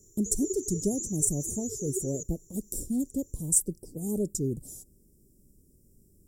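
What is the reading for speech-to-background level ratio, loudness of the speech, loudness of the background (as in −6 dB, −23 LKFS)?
6.5 dB, −30.0 LKFS, −36.5 LKFS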